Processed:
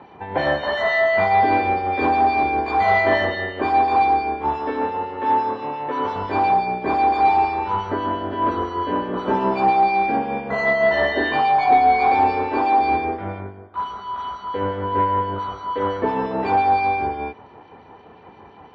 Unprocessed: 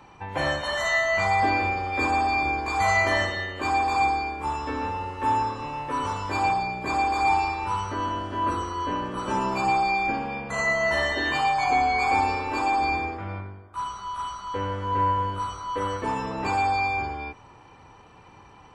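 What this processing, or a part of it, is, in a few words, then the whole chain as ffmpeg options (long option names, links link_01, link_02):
guitar amplifier with harmonic tremolo: -filter_complex "[0:a]acrossover=split=2300[link_01][link_02];[link_01]aeval=exprs='val(0)*(1-0.5/2+0.5/2*cos(2*PI*5.8*n/s))':channel_layout=same[link_03];[link_02]aeval=exprs='val(0)*(1-0.5/2-0.5/2*cos(2*PI*5.8*n/s))':channel_layout=same[link_04];[link_03][link_04]amix=inputs=2:normalize=0,asoftclip=type=tanh:threshold=-17dB,highpass=86,equalizer=frequency=120:width_type=q:width=4:gain=-8,equalizer=frequency=230:width_type=q:width=4:gain=4,equalizer=frequency=420:width_type=q:width=4:gain=7,equalizer=frequency=700:width_type=q:width=4:gain=5,equalizer=frequency=1200:width_type=q:width=4:gain=-5,equalizer=frequency=2600:width_type=q:width=4:gain=-7,lowpass=frequency=3600:width=0.5412,lowpass=frequency=3600:width=1.3066,asettb=1/sr,asplit=3[link_05][link_06][link_07];[link_05]atrim=end=4.584[link_08];[link_06]atrim=start=4.58:end=6.16,asetpts=PTS-STARTPTS,afade=type=in:duration=0.004:curve=qsin,afade=type=out:start_time=1.576:duration=0.004:curve=qsin,highpass=frequency=200:poles=1[link_09];[link_07]atrim=start=6.156[link_10];[link_08][link_09]acrossfade=duration=0.004:curve1=hsin:curve2=qsin[link_11];[link_11][link_10]acrossfade=duration=0.004:curve1=qsin:curve2=hsin,volume=7.5dB"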